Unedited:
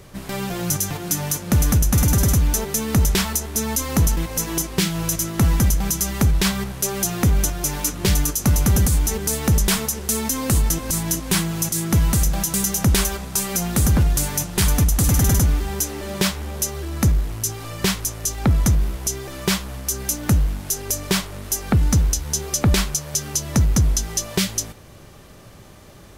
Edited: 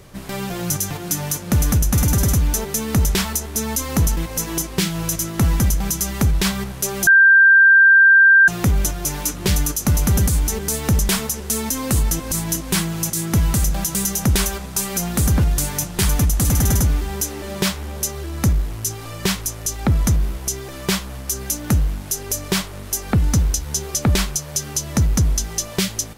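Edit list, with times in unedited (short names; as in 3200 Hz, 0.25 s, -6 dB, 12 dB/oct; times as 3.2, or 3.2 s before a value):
7.07 add tone 1580 Hz -7 dBFS 1.41 s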